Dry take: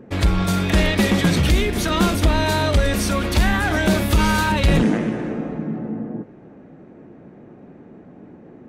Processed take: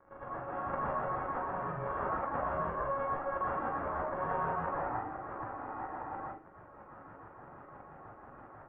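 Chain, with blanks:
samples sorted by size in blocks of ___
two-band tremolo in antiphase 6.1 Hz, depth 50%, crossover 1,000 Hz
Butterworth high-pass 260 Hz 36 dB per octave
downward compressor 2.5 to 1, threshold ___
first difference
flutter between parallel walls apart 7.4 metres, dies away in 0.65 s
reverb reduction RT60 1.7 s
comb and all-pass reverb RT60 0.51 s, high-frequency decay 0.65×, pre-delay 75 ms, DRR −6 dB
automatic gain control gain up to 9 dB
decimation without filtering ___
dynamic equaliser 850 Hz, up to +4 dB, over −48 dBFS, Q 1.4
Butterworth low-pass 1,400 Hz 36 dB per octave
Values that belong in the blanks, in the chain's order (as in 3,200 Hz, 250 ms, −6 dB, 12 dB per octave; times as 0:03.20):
16 samples, −40 dBFS, 5×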